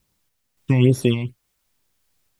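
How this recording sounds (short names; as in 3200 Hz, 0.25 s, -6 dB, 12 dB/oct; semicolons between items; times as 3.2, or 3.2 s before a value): phasing stages 8, 2.3 Hz, lowest notch 400–2800 Hz; a quantiser's noise floor 12-bit, dither triangular; random-step tremolo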